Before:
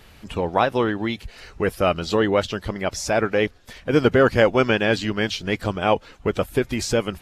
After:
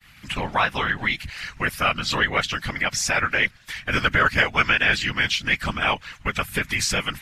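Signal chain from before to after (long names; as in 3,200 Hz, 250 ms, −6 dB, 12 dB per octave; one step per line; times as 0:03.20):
downward expander −41 dBFS
drawn EQ curve 160 Hz 0 dB, 310 Hz −17 dB, 2,000 Hz +11 dB, 3,700 Hz +5 dB
in parallel at +2.5 dB: downward compressor, threshold −25 dBFS, peak gain reduction 15 dB
on the sum: random phases in short frames
level −5 dB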